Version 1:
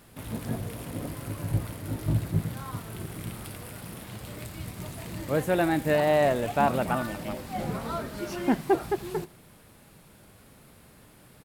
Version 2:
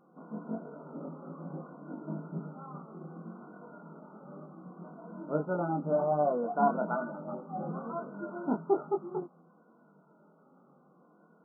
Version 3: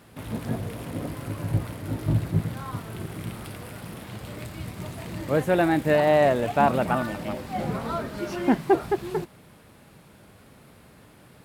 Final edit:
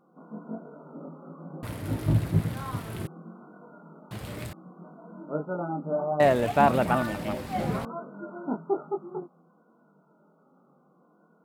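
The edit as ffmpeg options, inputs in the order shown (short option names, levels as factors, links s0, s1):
-filter_complex "[2:a]asplit=3[s0][s1][s2];[1:a]asplit=4[s3][s4][s5][s6];[s3]atrim=end=1.632[s7];[s0]atrim=start=1.628:end=3.072[s8];[s4]atrim=start=3.068:end=4.112[s9];[s1]atrim=start=4.108:end=4.532[s10];[s5]atrim=start=4.528:end=6.202[s11];[s2]atrim=start=6.198:end=7.852[s12];[s6]atrim=start=7.848[s13];[s7][s8]acrossfade=d=0.004:c1=hsin:c2=hsin[s14];[s14][s9]acrossfade=d=0.004:c1=hsin:c2=hsin[s15];[s15][s10]acrossfade=d=0.004:c1=hsin:c2=hsin[s16];[s16][s11]acrossfade=d=0.004:c1=hsin:c2=hsin[s17];[s17][s12]acrossfade=d=0.004:c1=hsin:c2=hsin[s18];[s18][s13]acrossfade=d=0.004:c1=hsin:c2=hsin"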